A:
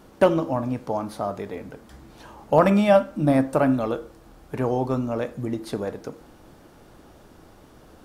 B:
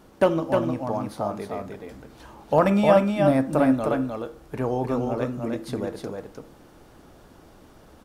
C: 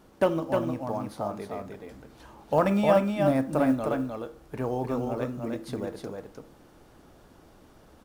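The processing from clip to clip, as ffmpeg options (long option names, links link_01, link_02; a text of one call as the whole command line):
ffmpeg -i in.wav -af "aecho=1:1:307:0.631,volume=-2dB" out.wav
ffmpeg -i in.wav -af "acrusher=bits=9:mode=log:mix=0:aa=0.000001,volume=-4dB" out.wav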